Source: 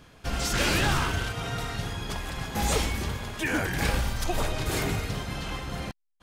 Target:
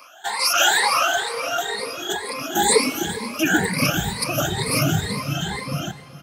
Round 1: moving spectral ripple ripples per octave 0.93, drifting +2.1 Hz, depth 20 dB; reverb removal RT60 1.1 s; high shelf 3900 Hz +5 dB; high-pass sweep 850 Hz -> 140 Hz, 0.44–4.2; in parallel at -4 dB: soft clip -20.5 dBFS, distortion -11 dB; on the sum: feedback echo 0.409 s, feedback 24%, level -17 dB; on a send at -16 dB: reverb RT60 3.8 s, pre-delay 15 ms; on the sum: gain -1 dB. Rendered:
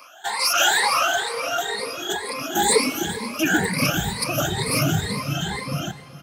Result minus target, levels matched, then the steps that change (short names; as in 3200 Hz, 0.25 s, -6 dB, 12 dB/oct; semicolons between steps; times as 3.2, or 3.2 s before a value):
soft clip: distortion +11 dB
change: soft clip -11 dBFS, distortion -22 dB